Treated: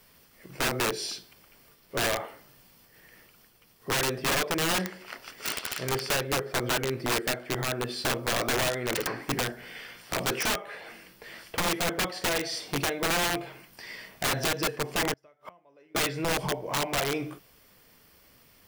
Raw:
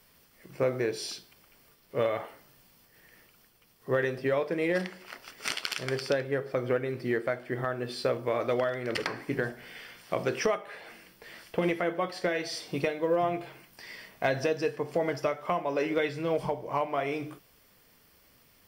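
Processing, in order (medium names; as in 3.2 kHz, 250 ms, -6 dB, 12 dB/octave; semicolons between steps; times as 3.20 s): 15.13–15.95 s: inverted gate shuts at -31 dBFS, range -32 dB; integer overflow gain 24 dB; trim +3 dB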